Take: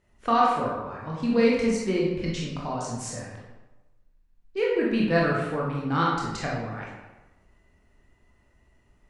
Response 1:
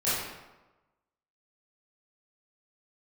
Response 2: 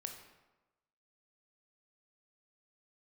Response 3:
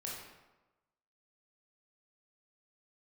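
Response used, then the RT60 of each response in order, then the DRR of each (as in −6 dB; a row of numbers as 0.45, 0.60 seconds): 3; 1.1, 1.1, 1.1 seconds; −13.0, 4.0, −4.5 decibels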